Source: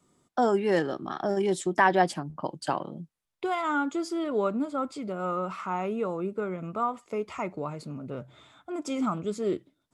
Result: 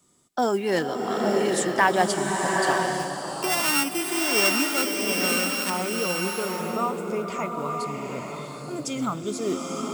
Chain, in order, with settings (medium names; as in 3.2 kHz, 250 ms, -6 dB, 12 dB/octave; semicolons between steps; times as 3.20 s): 2.99–5.70 s: sorted samples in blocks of 16 samples; treble shelf 3.2 kHz +11 dB; modulation noise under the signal 30 dB; swelling reverb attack 880 ms, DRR 0.5 dB